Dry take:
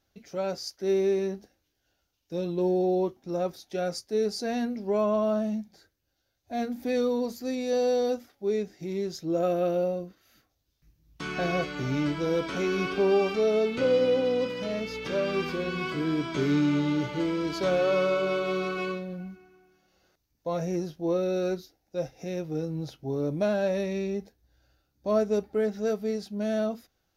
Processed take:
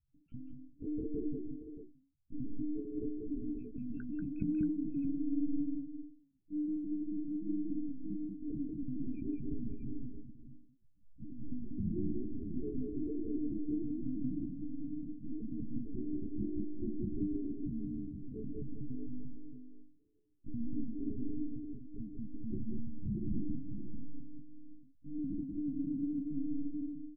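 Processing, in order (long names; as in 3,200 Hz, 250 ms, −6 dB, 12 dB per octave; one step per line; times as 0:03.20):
samples in bit-reversed order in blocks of 64 samples
tilt shelving filter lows +5 dB, about 810 Hz
brickwall limiter −22.5 dBFS, peak gain reduction 8.5 dB
spectral peaks only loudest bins 2
ring modulation 62 Hz
one-pitch LPC vocoder at 8 kHz 300 Hz
double-tracking delay 14 ms −13 dB
multi-tap delay 188/546/629 ms −3.5/−19.5/−9.5 dB
every ending faded ahead of time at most 110 dB per second
level +1 dB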